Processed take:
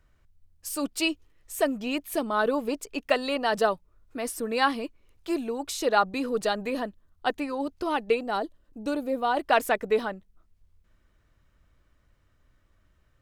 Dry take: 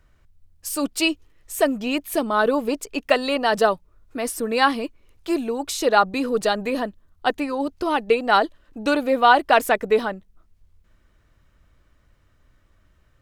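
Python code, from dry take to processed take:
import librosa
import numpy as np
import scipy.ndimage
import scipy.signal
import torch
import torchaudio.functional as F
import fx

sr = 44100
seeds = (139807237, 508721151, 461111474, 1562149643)

y = fx.peak_eq(x, sr, hz=2100.0, db=-10.5, octaves=2.9, at=(8.23, 9.37))
y = y * librosa.db_to_amplitude(-5.5)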